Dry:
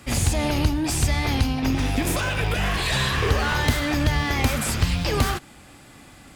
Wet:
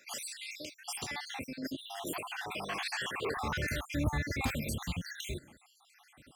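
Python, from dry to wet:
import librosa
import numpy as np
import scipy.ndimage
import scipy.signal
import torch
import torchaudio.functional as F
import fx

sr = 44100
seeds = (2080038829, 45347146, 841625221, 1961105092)

y = fx.spec_dropout(x, sr, seeds[0], share_pct=65)
y = fx.highpass(y, sr, hz=fx.steps((0.0, 630.0), (0.98, 300.0), (3.37, 60.0)), slope=12)
y = y * 10.0 ** (-8.0 / 20.0)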